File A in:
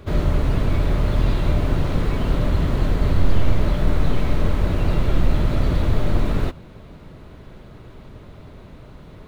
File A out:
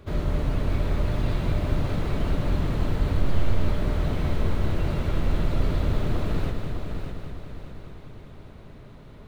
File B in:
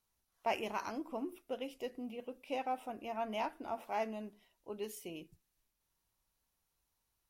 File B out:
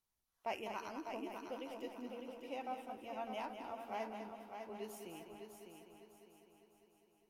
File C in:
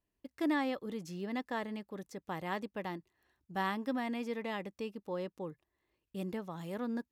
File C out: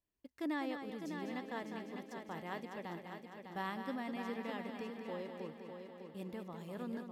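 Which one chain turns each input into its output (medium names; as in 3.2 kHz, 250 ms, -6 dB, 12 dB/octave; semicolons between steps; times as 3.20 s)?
multi-head delay 201 ms, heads first and third, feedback 58%, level -7.5 dB; trim -6.5 dB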